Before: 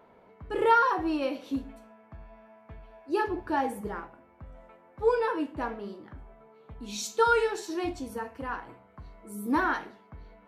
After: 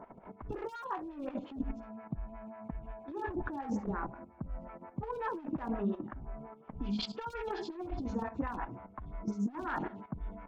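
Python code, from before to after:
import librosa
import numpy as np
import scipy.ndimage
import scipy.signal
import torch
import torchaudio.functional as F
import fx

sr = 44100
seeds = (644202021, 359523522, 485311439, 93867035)

y = fx.freq_compress(x, sr, knee_hz=2300.0, ratio=1.5)
y = fx.highpass(y, sr, hz=89.0, slope=6)
y = fx.peak_eq(y, sr, hz=470.0, db=-9.5, octaves=0.5)
y = fx.level_steps(y, sr, step_db=12)
y = fx.riaa(y, sr, side='playback')
y = np.clip(y, -10.0 ** (-30.0 / 20.0), 10.0 ** (-30.0 / 20.0))
y = fx.over_compress(y, sr, threshold_db=-39.0, ratio=-0.5)
y = fx.stagger_phaser(y, sr, hz=5.6)
y = F.gain(torch.from_numpy(y), 7.5).numpy()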